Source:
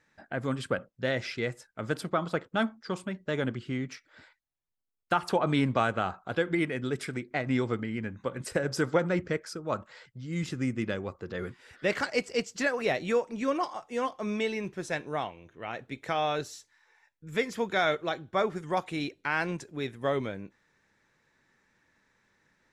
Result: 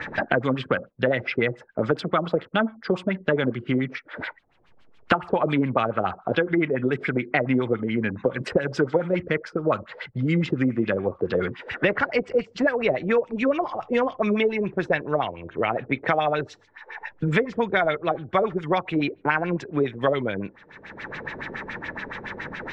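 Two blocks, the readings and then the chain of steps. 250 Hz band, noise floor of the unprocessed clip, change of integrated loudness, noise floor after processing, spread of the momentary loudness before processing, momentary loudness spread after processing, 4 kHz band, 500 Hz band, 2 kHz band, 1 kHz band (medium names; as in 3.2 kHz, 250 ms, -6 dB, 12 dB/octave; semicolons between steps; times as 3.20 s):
+7.5 dB, -75 dBFS, +6.5 dB, -55 dBFS, 10 LU, 11 LU, +3.0 dB, +7.5 dB, +7.0 dB, +5.5 dB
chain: LFO low-pass sine 7.1 Hz 420–3400 Hz; three bands compressed up and down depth 100%; trim +4 dB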